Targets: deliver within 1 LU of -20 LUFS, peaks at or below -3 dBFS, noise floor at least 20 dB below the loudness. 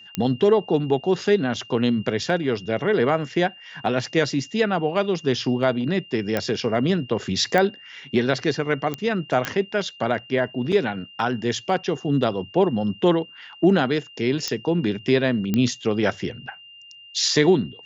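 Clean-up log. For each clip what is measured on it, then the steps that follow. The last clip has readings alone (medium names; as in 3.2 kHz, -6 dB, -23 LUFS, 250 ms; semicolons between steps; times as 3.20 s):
clicks found 7; steady tone 2.8 kHz; tone level -43 dBFS; loudness -22.5 LUFS; peak level -6.0 dBFS; loudness target -20.0 LUFS
-> de-click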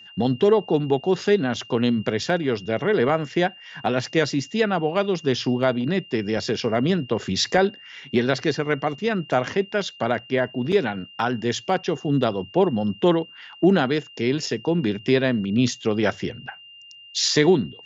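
clicks found 0; steady tone 2.8 kHz; tone level -43 dBFS
-> band-stop 2.8 kHz, Q 30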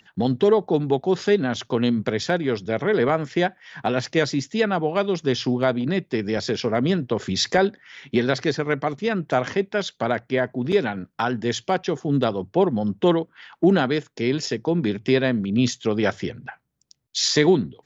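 steady tone not found; loudness -22.5 LUFS; peak level -6.0 dBFS; loudness target -20.0 LUFS
-> trim +2.5 dB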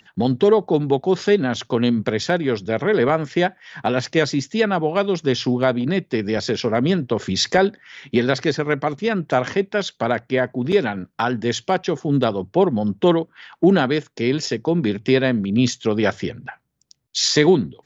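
loudness -20.0 LUFS; peak level -3.5 dBFS; noise floor -65 dBFS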